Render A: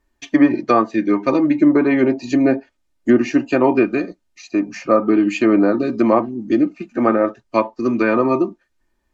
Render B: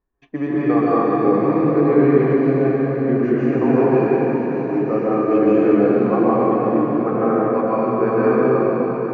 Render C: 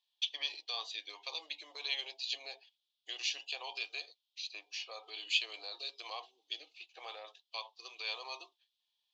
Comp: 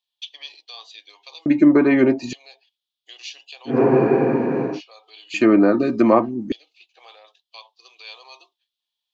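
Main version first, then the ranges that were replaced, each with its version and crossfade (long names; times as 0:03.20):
C
0:01.46–0:02.33: punch in from A
0:03.73–0:04.73: punch in from B, crossfade 0.16 s
0:05.34–0:06.52: punch in from A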